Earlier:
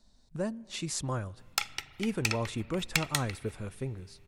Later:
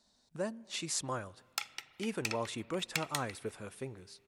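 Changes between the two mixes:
background -6.5 dB; master: add high-pass 400 Hz 6 dB/octave

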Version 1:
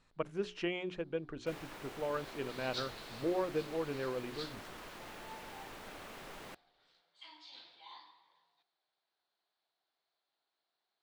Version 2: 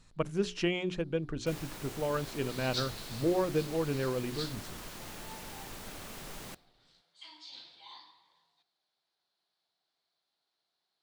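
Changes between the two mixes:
speech +3.5 dB; second sound: send +6.5 dB; master: add tone controls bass +9 dB, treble +11 dB

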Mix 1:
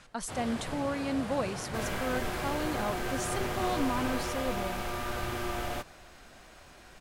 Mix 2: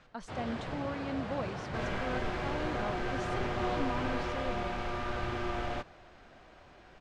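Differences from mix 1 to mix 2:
speech -5.0 dB; master: add distance through air 150 m

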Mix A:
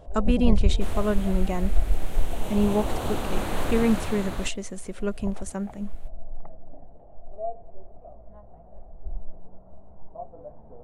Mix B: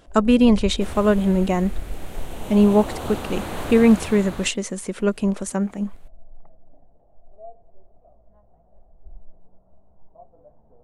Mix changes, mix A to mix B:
speech +8.0 dB; first sound -9.0 dB

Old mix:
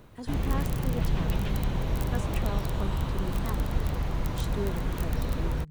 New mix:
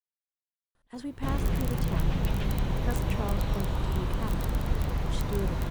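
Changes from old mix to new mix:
speech: entry +0.75 s; background: entry +0.95 s

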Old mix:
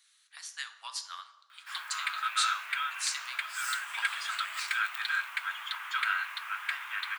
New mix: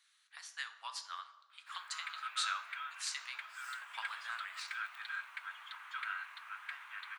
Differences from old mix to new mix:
background -9.0 dB; master: add treble shelf 3.7 kHz -10.5 dB

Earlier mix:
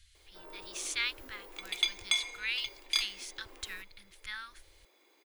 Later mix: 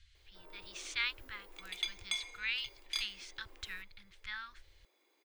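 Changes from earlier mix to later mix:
speech: add distance through air 120 m; background -7.5 dB

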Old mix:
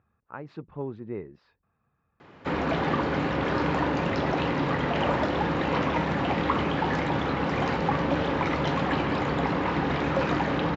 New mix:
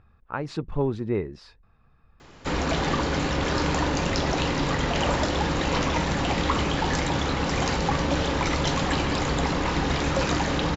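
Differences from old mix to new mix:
speech +8.5 dB; master: remove band-pass 110–2400 Hz

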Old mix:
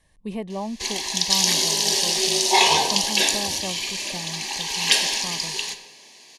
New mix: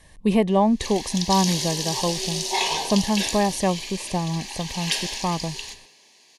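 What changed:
speech +11.5 dB; background -7.0 dB

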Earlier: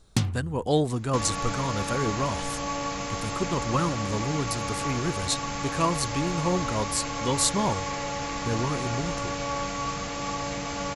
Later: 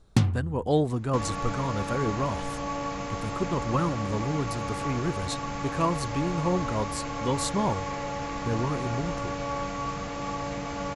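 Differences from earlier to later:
first sound +3.5 dB; master: add treble shelf 2.7 kHz -10 dB

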